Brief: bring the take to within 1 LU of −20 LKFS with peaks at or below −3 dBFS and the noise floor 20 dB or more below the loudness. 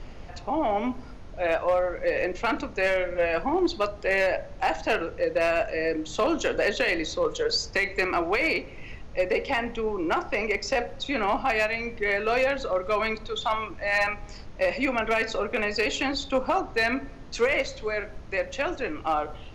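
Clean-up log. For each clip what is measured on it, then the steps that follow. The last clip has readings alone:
share of clipped samples 0.6%; peaks flattened at −16.5 dBFS; background noise floor −42 dBFS; target noise floor −47 dBFS; integrated loudness −26.5 LKFS; sample peak −16.5 dBFS; target loudness −20.0 LKFS
→ clipped peaks rebuilt −16.5 dBFS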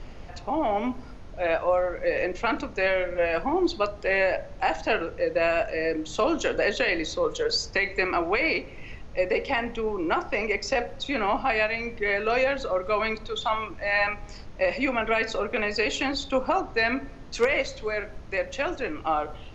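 share of clipped samples 0.0%; background noise floor −42 dBFS; target noise floor −46 dBFS
→ noise reduction from a noise print 6 dB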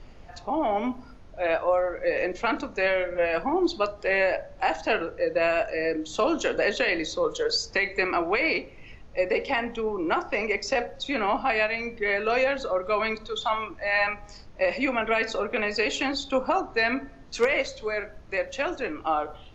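background noise floor −47 dBFS; integrated loudness −26.0 LKFS; sample peak −10.0 dBFS; target loudness −20.0 LKFS
→ level +6 dB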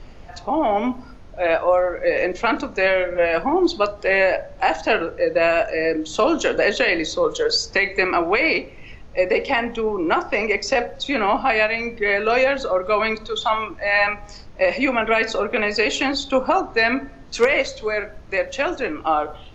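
integrated loudness −20.0 LKFS; sample peak −4.0 dBFS; background noise floor −41 dBFS

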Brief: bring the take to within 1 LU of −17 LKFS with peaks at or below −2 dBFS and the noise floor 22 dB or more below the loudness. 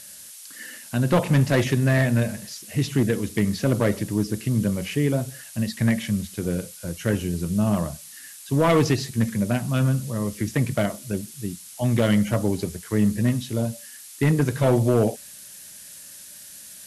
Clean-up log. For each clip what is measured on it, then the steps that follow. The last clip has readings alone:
share of clipped samples 0.7%; peaks flattened at −12.5 dBFS; background noise floor −43 dBFS; target noise floor −46 dBFS; integrated loudness −23.5 LKFS; sample peak −12.5 dBFS; target loudness −17.0 LKFS
→ clipped peaks rebuilt −12.5 dBFS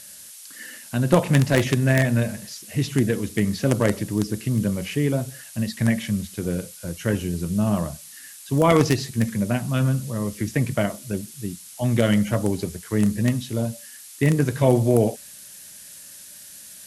share of clipped samples 0.0%; background noise floor −43 dBFS; target noise floor −45 dBFS
→ noise reduction from a noise print 6 dB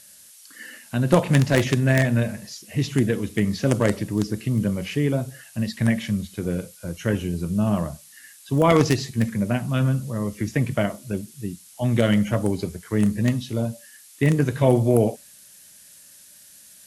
background noise floor −49 dBFS; integrated loudness −23.0 LKFS; sample peak −3.5 dBFS; target loudness −17.0 LKFS
→ level +6 dB
brickwall limiter −2 dBFS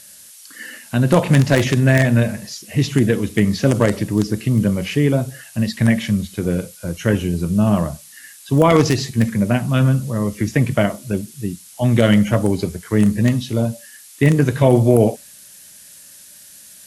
integrated loudness −17.5 LKFS; sample peak −2.0 dBFS; background noise floor −43 dBFS

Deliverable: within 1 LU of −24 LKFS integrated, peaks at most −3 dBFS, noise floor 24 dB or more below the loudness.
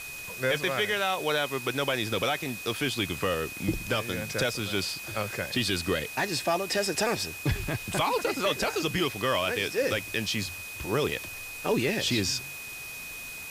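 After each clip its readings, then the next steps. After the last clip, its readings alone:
interfering tone 2,500 Hz; level of the tone −39 dBFS; background noise floor −40 dBFS; target noise floor −53 dBFS; integrated loudness −28.5 LKFS; sample peak −13.0 dBFS; target loudness −24.0 LKFS
→ notch filter 2,500 Hz, Q 30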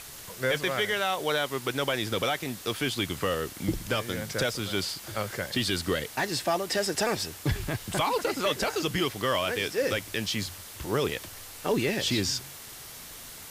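interfering tone none found; background noise floor −44 dBFS; target noise floor −53 dBFS
→ broadband denoise 9 dB, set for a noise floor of −44 dBFS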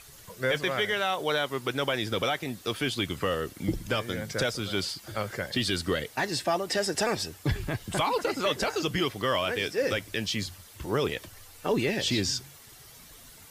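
background noise floor −51 dBFS; target noise floor −53 dBFS
→ broadband denoise 6 dB, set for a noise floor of −51 dBFS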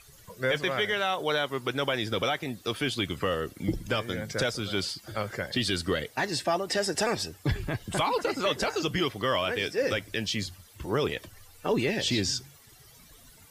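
background noise floor −55 dBFS; integrated loudness −29.0 LKFS; sample peak −14.5 dBFS; target loudness −24.0 LKFS
→ level +5 dB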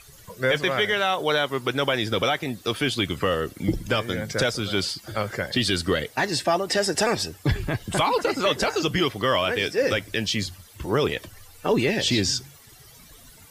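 integrated loudness −24.0 LKFS; sample peak −9.5 dBFS; background noise floor −50 dBFS

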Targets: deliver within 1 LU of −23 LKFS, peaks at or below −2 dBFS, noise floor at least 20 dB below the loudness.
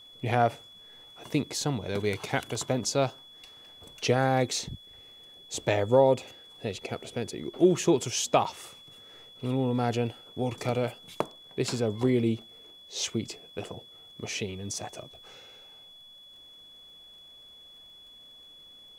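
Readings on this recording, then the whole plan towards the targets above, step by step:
crackle rate 28 per second; interfering tone 3,400 Hz; level of the tone −49 dBFS; integrated loudness −29.0 LKFS; sample peak −9.5 dBFS; target loudness −23.0 LKFS
→ click removal
notch filter 3,400 Hz, Q 30
level +6 dB

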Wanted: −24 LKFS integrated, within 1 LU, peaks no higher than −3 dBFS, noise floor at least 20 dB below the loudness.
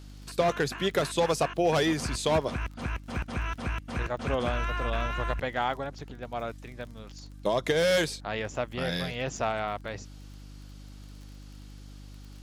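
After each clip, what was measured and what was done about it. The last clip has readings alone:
crackle rate 23 per second; mains hum 50 Hz; hum harmonics up to 300 Hz; level of the hum −42 dBFS; integrated loudness −29.5 LKFS; sample peak −13.5 dBFS; target loudness −24.0 LKFS
→ click removal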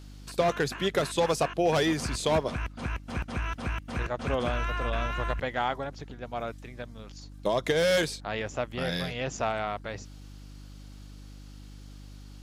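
crackle rate 0.16 per second; mains hum 50 Hz; hum harmonics up to 300 Hz; level of the hum −43 dBFS
→ hum removal 50 Hz, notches 6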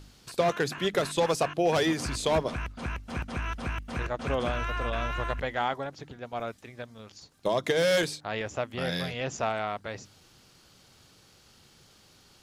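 mains hum none found; integrated loudness −30.0 LKFS; sample peak −14.0 dBFS; target loudness −24.0 LKFS
→ level +6 dB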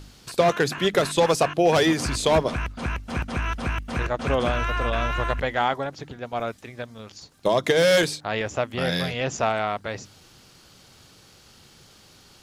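integrated loudness −24.0 LKFS; sample peak −8.0 dBFS; background noise floor −53 dBFS

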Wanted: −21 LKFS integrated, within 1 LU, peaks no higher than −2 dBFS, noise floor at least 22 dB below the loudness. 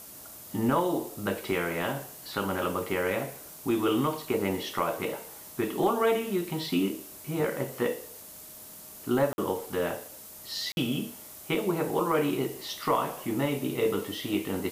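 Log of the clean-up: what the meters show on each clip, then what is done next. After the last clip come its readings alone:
number of dropouts 2; longest dropout 51 ms; background noise floor −47 dBFS; target noise floor −52 dBFS; integrated loudness −30.0 LKFS; sample peak −13.5 dBFS; target loudness −21.0 LKFS
→ repair the gap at 0:09.33/0:10.72, 51 ms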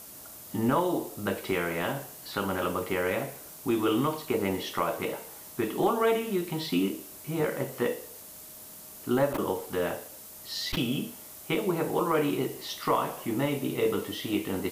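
number of dropouts 0; background noise floor −46 dBFS; target noise floor −52 dBFS
→ broadband denoise 6 dB, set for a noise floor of −46 dBFS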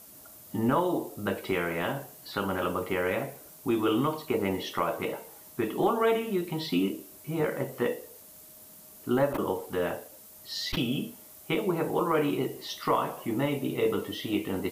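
background noise floor −51 dBFS; target noise floor −52 dBFS
→ broadband denoise 6 dB, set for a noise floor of −51 dBFS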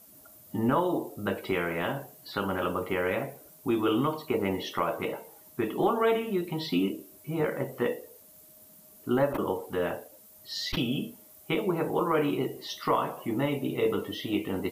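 background noise floor −54 dBFS; integrated loudness −30.0 LKFS; sample peak −14.0 dBFS; target loudness −21.0 LKFS
→ level +9 dB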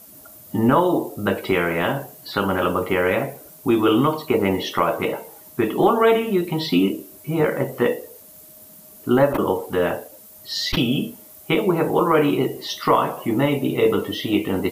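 integrated loudness −21.0 LKFS; sample peak −5.0 dBFS; background noise floor −45 dBFS

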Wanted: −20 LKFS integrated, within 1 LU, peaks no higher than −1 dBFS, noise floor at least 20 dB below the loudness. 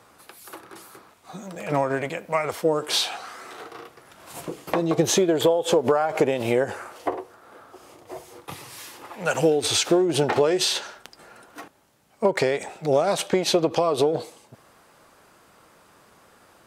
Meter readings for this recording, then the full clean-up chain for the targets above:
integrated loudness −23.0 LKFS; sample peak −9.0 dBFS; target loudness −20.0 LKFS
→ level +3 dB

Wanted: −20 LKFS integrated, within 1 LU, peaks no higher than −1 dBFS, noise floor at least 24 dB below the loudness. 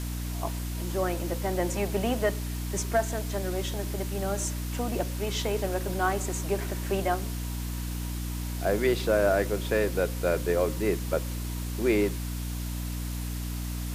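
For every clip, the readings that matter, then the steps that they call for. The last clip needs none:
mains hum 60 Hz; hum harmonics up to 300 Hz; level of the hum −30 dBFS; background noise floor −33 dBFS; target noise floor −54 dBFS; integrated loudness −29.5 LKFS; sample peak −13.0 dBFS; target loudness −20.0 LKFS
→ hum removal 60 Hz, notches 5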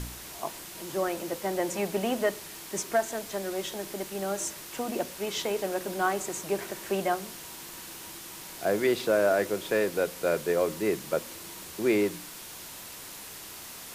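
mains hum none found; background noise floor −44 dBFS; target noise floor −55 dBFS
→ broadband denoise 11 dB, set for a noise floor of −44 dBFS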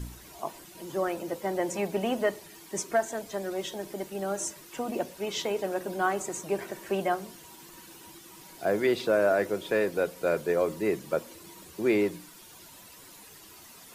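background noise floor −51 dBFS; target noise floor −54 dBFS
→ broadband denoise 6 dB, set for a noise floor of −51 dBFS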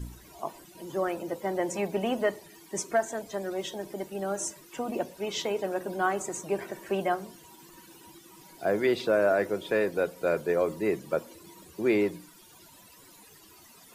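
background noise floor −54 dBFS; integrated loudness −30.0 LKFS; sample peak −14.0 dBFS; target loudness −20.0 LKFS
→ level +10 dB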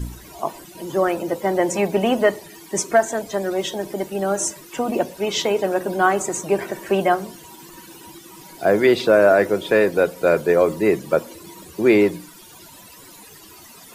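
integrated loudness −20.0 LKFS; sample peak −4.0 dBFS; background noise floor −44 dBFS

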